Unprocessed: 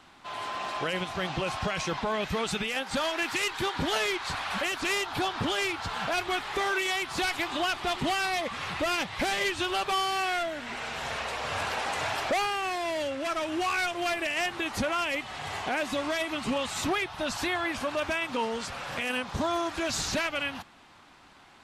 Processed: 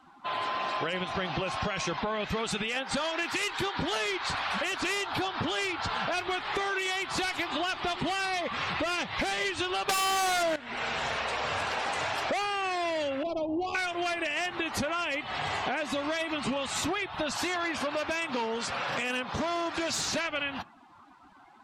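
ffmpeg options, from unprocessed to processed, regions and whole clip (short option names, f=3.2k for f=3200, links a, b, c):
-filter_complex "[0:a]asettb=1/sr,asplit=3[a][b][c];[a]atrim=end=9.894[d];[b]atrim=start=9.89:end=10.56,asetpts=PTS-STARTPTS,afade=t=in:d=0.004:c=qsin,afade=t=out:st=0.666:d=0.004:c=qsin,acontrast=36,aeval=exprs='0.188*sin(PI/2*2.82*val(0)/0.188)':c=same[e];[c]atrim=start=10.556[f];[d][e]acrossfade=d=0.004:c1=hsin:c2=qsin[g];[g][f]acrossfade=d=0.004:c1=qsin:c2=hsin,asettb=1/sr,asplit=3[h][i][j];[h]atrim=end=13.234[k];[i]atrim=start=13.23:end=13.75,asetpts=PTS-STARTPTS,afade=t=in:d=0.004:c=qsin,afade=t=out:st=0.516:d=0.004:c=qsin,adynamicsmooth=sensitivity=2:basefreq=570,asuperstop=centerf=1600:order=4:qfactor=0.73[l];[j]atrim=start=13.746[m];[k][l]acrossfade=d=0.004:c1=hsin:c2=qsin[n];[n][m]acrossfade=d=0.004:c1=qsin:c2=hsin,asettb=1/sr,asplit=3[o][p][q];[o]atrim=end=17.324[r];[p]atrim=start=17.32:end=20.16,asetpts=PTS-STARTPTS,afade=t=in:d=0.004:c=qsin,afade=t=out:st=2.836:d=0.004:c=qsin,aeval=exprs='0.0596*(abs(mod(val(0)/0.0596+3,4)-2)-1)':c=same,highpass=f=120:p=1[s];[q]atrim=start=20.156[t];[r][s]acrossfade=d=0.004:c1=hsin:c2=qsin[u];[u][t]acrossfade=d=0.004:c1=qsin:c2=hsin,afftdn=nr=19:nf=-49,lowshelf=f=86:g=-5.5,acompressor=threshold=-36dB:ratio=6,volume=7.5dB"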